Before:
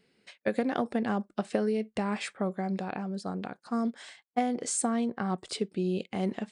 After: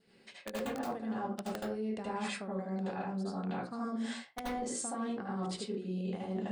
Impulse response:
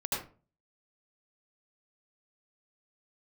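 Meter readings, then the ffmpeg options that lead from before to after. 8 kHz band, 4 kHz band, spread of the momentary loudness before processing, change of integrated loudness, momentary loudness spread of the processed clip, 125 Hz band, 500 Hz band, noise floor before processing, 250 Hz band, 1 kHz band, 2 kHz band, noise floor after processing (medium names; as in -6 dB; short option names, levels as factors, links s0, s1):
-7.0 dB, -4.0 dB, 6 LU, -6.0 dB, 3 LU, -4.5 dB, -6.5 dB, -76 dBFS, -6.0 dB, -5.0 dB, -5.5 dB, -61 dBFS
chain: -filter_complex "[0:a]adynamicequalizer=threshold=0.001:dfrequency=2300:dqfactor=4.1:tfrequency=2300:tqfactor=4.1:attack=5:release=100:ratio=0.375:range=2:mode=cutabove:tftype=bell,aeval=exprs='(mod(6.68*val(0)+1,2)-1)/6.68':c=same,bandreject=f=60:t=h:w=6,bandreject=f=120:t=h:w=6,bandreject=f=180:t=h:w=6,bandreject=f=240:t=h:w=6,bandreject=f=300:t=h:w=6,bandreject=f=360:t=h:w=6,bandreject=f=420:t=h:w=6,bandreject=f=480:t=h:w=6,bandreject=f=540:t=h:w=6[s0];[1:a]atrim=start_sample=2205,afade=t=out:st=0.42:d=0.01,atrim=end_sample=18963[s1];[s0][s1]afir=irnorm=-1:irlink=0,areverse,acompressor=threshold=0.02:ratio=10,areverse"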